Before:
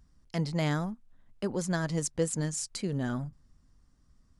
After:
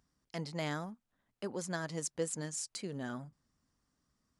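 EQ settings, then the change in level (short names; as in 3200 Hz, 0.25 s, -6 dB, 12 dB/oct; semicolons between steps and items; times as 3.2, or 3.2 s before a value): HPF 310 Hz 6 dB/oct; -4.5 dB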